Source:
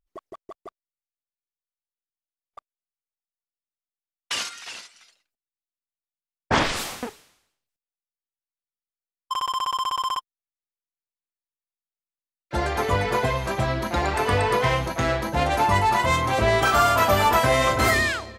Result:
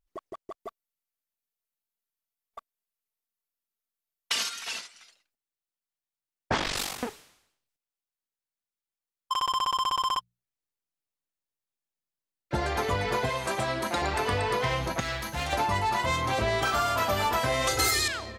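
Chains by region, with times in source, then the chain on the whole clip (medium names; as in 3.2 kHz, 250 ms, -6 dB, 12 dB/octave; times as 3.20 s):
0.60–4.79 s: peaking EQ 13 kHz +9 dB 0.41 oct + comb 4.5 ms, depth 56%
6.56–6.99 s: treble shelf 9.3 kHz +4.5 dB + ring modulator 24 Hz
9.41–12.56 s: bass shelf 410 Hz +7.5 dB + hum notches 60/120/180 Hz
13.29–14.02 s: high-pass 280 Hz 6 dB/octave + peaking EQ 8.7 kHz +9.5 dB 0.39 oct
15.00–15.53 s: amplifier tone stack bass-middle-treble 5-5-5 + waveshaping leveller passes 2
17.67–18.08 s: tone controls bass -2 dB, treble +12 dB + comb 2.4 ms, depth 97%
whole clip: dynamic bell 4.4 kHz, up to +4 dB, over -37 dBFS, Q 1; compression 3:1, threshold -26 dBFS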